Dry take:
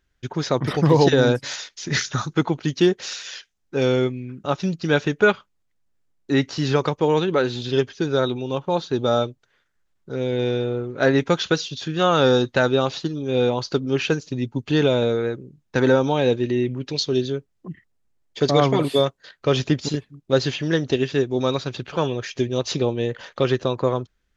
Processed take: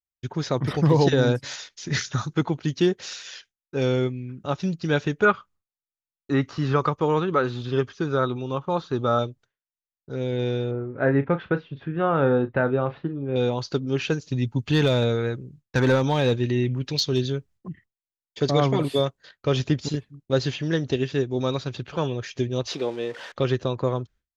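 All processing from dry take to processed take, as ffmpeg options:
-filter_complex "[0:a]asettb=1/sr,asplit=3[a][b][c];[a]atrim=end=5.254[d];[b]atrim=start=5.25:end=9.19,asetpts=PTS-STARTPTS,afade=t=in:d=0.004:c=qsin,afade=t=out:st=3.936:d=0.004:c=qsin,acrossover=split=2800[e][f];[f]acompressor=threshold=-41dB:ratio=4:attack=1:release=60[g];[e][g]amix=inputs=2:normalize=0,equalizer=f=1.2k:w=3.6:g=11.5[h];[c]atrim=start=9.186[i];[d][h]acrossfade=d=0.004:c1=hsin:c2=qsin[j];[j][i]acrossfade=d=0.004:c1=qsin:c2=hsin,asettb=1/sr,asplit=3[k][l][m];[k]atrim=end=10.714[n];[l]atrim=start=10.71:end=13.36,asetpts=PTS-STARTPTS,afade=t=in:d=0.004:c=qsin,afade=t=out:st=2.646:d=0.004:c=qsin,lowpass=f=2.1k:w=0.5412,lowpass=f=2.1k:w=1.3066,asplit=2[o][p];[p]adelay=36,volume=-12.5dB[q];[o][q]amix=inputs=2:normalize=0,atrim=end_sample=116865[r];[m]atrim=start=13.356[s];[n][r]acrossfade=d=0.004:c1=hsin:c2=qsin[t];[t][s]acrossfade=d=0.004:c1=qsin:c2=hsin,asettb=1/sr,asplit=3[u][v][w];[u]atrim=end=14.294[x];[v]atrim=start=14.29:end=17.69,asetpts=PTS-STARTPTS,afade=t=in:d=0.004:c=qsin,afade=t=out:st=3.396:d=0.004:c=qsin,equalizer=f=370:w=0.68:g=-5,acontrast=28,volume=10dB,asoftclip=hard,volume=-10dB[y];[w]atrim=start=17.686[z];[x][y]acrossfade=d=0.004:c1=hsin:c2=qsin[aa];[aa][z]acrossfade=d=0.004:c1=qsin:c2=hsin,asettb=1/sr,asplit=3[ab][ac][ad];[ab]atrim=end=22.674[ae];[ac]atrim=start=22.67:end=23.32,asetpts=PTS-STARTPTS,afade=t=in:d=0.004:c=qsin,afade=t=out:st=0.646:d=0.004:c=qsin,aeval=exprs='val(0)+0.5*0.0211*sgn(val(0))':c=same,highpass=330,lowpass=5.8k[af];[ad]atrim=start=23.316[ag];[ae][af]acrossfade=d=0.004:c1=hsin:c2=qsin[ah];[ah][ag]acrossfade=d=0.004:c1=qsin:c2=hsin,agate=range=-33dB:threshold=-43dB:ratio=3:detection=peak,equalizer=f=80:t=o:w=2:g=6.5,volume=-4.5dB"

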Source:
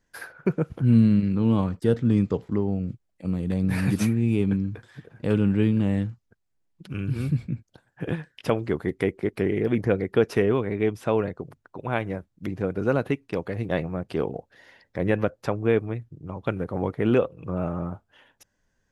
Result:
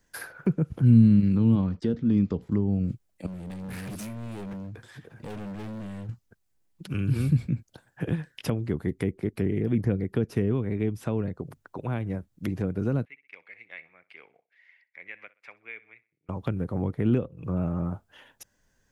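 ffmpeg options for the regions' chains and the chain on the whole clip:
-filter_complex "[0:a]asettb=1/sr,asplit=3[a][b][c];[a]atrim=end=1.554[d];[b]atrim=start=1.55:end=2.41,asetpts=PTS-STARTPTS,afade=t=in:d=0.004:c=qsin,afade=t=out:st=0.856:d=0.004:c=qsin,lowpass=f=5.9k:w=0.5412,lowpass=f=5.9k:w=1.3066,equalizer=f=120:t=o:w=0.39:g=-13[e];[c]atrim=start=2.406[f];[d][e]acrossfade=d=0.004:c1=hsin:c2=qsin[g];[g][f]acrossfade=d=0.004:c1=qsin:c2=hsin,asettb=1/sr,asplit=3[h][i][j];[h]atrim=end=3.264[k];[i]atrim=start=3.26:end=6.09,asetpts=PTS-STARTPTS,afade=t=in:d=0.004:c=qsin,afade=t=out:st=2.826:d=0.004:c=qsin,asoftclip=type=hard:threshold=-28dB,acompressor=threshold=-46dB:ratio=2:attack=3.2:release=140:knee=1:detection=peak[l];[j]atrim=start=6.086[m];[k][l]acrossfade=d=0.004:c1=hsin:c2=qsin[n];[n][m]acrossfade=d=0.004:c1=qsin:c2=hsin,asettb=1/sr,asplit=3[o][p][q];[o]atrim=end=13.054[r];[p]atrim=start=13.05:end=16.29,asetpts=PTS-STARTPTS,afade=t=in:d=0.004:c=qsin,afade=t=out:st=3.236:d=0.004:c=qsin,bandpass=f=2.2k:t=q:w=9.5,aecho=1:1:63|126|189:0.1|0.035|0.0123,atrim=end_sample=142884[s];[q]atrim=start=16.286[t];[r][s]acrossfade=d=0.004:c1=hsin:c2=qsin[u];[u][t]acrossfade=d=0.004:c1=qsin:c2=hsin,highshelf=f=6.5k:g=8,acrossover=split=270[v][w];[w]acompressor=threshold=-38dB:ratio=5[x];[v][x]amix=inputs=2:normalize=0,volume=2.5dB"

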